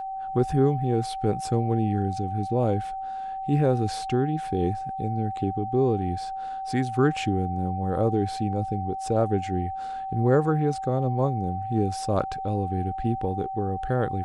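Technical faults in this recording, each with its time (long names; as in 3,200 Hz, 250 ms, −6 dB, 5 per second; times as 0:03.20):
whistle 770 Hz −30 dBFS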